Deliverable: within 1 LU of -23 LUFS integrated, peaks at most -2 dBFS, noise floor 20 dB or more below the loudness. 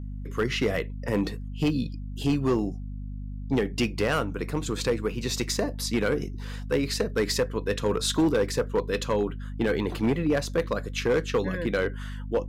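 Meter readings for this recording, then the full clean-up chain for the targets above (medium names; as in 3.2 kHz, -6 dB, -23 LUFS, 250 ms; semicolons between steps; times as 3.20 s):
clipped samples 1.2%; clipping level -17.5 dBFS; hum 50 Hz; highest harmonic 250 Hz; hum level -33 dBFS; loudness -27.5 LUFS; peak level -17.5 dBFS; loudness target -23.0 LUFS
-> clip repair -17.5 dBFS; hum notches 50/100/150/200/250 Hz; trim +4.5 dB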